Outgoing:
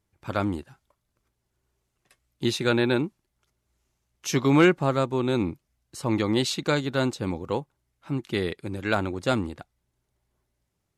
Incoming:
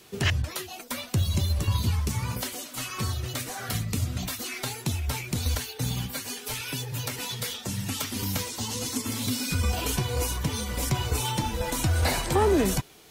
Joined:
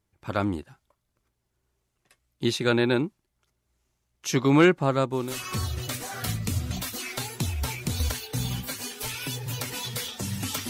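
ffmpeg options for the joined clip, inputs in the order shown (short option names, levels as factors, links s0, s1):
-filter_complex "[0:a]apad=whole_dur=10.69,atrim=end=10.69,atrim=end=5.39,asetpts=PTS-STARTPTS[s0];[1:a]atrim=start=2.57:end=8.15,asetpts=PTS-STARTPTS[s1];[s0][s1]acrossfade=d=0.28:c1=tri:c2=tri"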